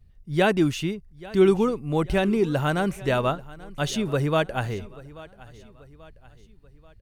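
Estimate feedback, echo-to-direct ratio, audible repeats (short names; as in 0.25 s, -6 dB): 46%, -19.0 dB, 3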